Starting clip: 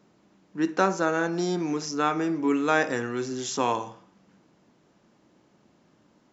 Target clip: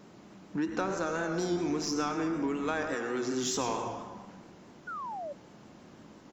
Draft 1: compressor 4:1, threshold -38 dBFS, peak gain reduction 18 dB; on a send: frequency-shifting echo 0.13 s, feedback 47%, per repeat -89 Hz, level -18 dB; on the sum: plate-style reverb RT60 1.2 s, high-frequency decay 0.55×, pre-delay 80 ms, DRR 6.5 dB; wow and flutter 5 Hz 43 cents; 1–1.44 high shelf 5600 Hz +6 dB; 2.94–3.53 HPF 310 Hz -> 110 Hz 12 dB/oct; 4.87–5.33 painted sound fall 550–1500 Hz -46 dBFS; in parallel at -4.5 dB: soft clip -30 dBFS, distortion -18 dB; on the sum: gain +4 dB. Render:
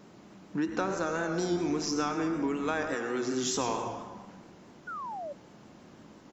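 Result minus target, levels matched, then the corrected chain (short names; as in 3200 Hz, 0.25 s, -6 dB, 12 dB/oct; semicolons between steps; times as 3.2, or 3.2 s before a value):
soft clip: distortion -8 dB
compressor 4:1, threshold -38 dBFS, peak gain reduction 18 dB; on a send: frequency-shifting echo 0.13 s, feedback 47%, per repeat -89 Hz, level -18 dB; on the sum: plate-style reverb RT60 1.2 s, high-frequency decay 0.55×, pre-delay 80 ms, DRR 6.5 dB; wow and flutter 5 Hz 43 cents; 1–1.44 high shelf 5600 Hz +6 dB; 2.94–3.53 HPF 310 Hz -> 110 Hz 12 dB/oct; 4.87–5.33 painted sound fall 550–1500 Hz -46 dBFS; in parallel at -4.5 dB: soft clip -38 dBFS, distortion -10 dB; on the sum: gain +4 dB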